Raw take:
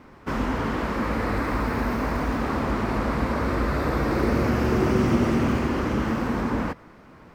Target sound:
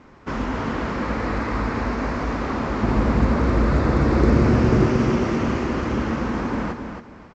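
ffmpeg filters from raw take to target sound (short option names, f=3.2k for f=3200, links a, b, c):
-filter_complex "[0:a]asettb=1/sr,asplit=3[a][b][c];[a]atrim=end=2.834[d];[b]atrim=start=2.83:end=4.86,asetpts=PTS-STARTPTS,afade=t=in:d=0.004:c=qsin,afade=t=out:st=2.026:d=0.004:c=qsin,lowshelf=f=380:g=7.5[e];[c]atrim=start=4.856[f];[d][e]acrossfade=d=0.004:c1=hsin:c2=qsin[g];[g][f]acrossfade=d=0.004:c1=qsin:c2=hsin,aecho=1:1:273|546|819:0.447|0.116|0.0302" -ar 16000 -c:a pcm_alaw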